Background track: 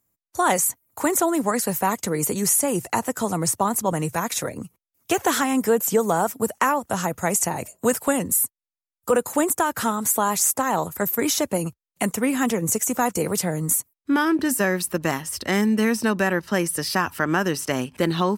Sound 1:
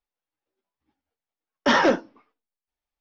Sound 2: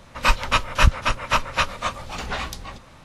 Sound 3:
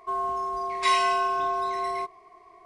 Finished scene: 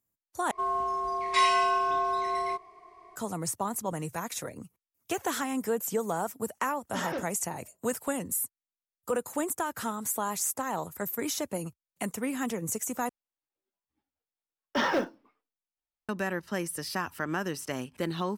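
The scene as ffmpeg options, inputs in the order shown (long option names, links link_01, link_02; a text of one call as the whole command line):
ffmpeg -i bed.wav -i cue0.wav -i cue1.wav -i cue2.wav -filter_complex "[1:a]asplit=2[link_01][link_02];[0:a]volume=-10dB[link_03];[link_01]aeval=exprs='sgn(val(0))*max(abs(val(0))-0.00562,0)':channel_layout=same[link_04];[link_02]acrusher=bits=8:mode=log:mix=0:aa=0.000001[link_05];[link_03]asplit=3[link_06][link_07][link_08];[link_06]atrim=end=0.514[link_09];[3:a]atrim=end=2.65,asetpts=PTS-STARTPTS,volume=-1dB[link_10];[link_07]atrim=start=3.156:end=13.094[link_11];[link_05]atrim=end=3,asetpts=PTS-STARTPTS,volume=-8.5dB[link_12];[link_08]atrim=start=16.086[link_13];[link_04]atrim=end=3,asetpts=PTS-STARTPTS,volume=-15.5dB,afade=type=in:duration=0.004:curve=hsin,afade=type=out:start_time=2.996:duration=0.004:curve=hsin,adelay=5280[link_14];[link_09][link_10]acrossfade=duration=0.004:curve1=hsin:curve2=hsin[link_15];[link_15][link_11]acrossfade=duration=0.004:curve1=hsin:curve2=hsin[link_16];[link_16][link_12]acrossfade=duration=0.004:curve1=hsin:curve2=hsin[link_17];[link_17][link_13]acrossfade=duration=0.004:curve1=hsin:curve2=hsin[link_18];[link_18][link_14]amix=inputs=2:normalize=0" out.wav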